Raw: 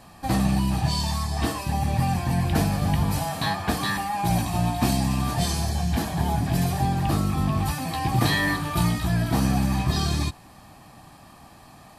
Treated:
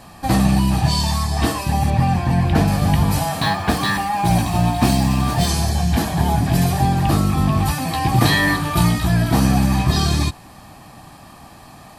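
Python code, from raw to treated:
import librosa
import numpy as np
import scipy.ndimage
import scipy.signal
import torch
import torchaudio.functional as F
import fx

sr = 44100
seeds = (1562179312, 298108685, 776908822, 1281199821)

y = fx.high_shelf(x, sr, hz=5800.0, db=-12.0, at=(1.9, 2.68))
y = fx.resample_linear(y, sr, factor=2, at=(3.4, 5.48))
y = F.gain(torch.from_numpy(y), 6.5).numpy()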